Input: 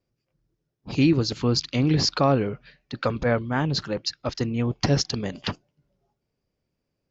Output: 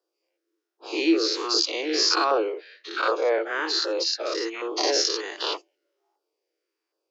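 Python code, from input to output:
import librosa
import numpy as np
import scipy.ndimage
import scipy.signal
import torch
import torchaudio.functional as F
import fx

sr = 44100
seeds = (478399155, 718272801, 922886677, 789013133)

y = fx.spec_dilate(x, sr, span_ms=120)
y = fx.filter_lfo_notch(y, sr, shape='saw_down', hz=1.3, low_hz=440.0, high_hz=2400.0, q=1.3)
y = scipy.signal.sosfilt(scipy.signal.cheby1(6, 3, 320.0, 'highpass', fs=sr, output='sos'), y)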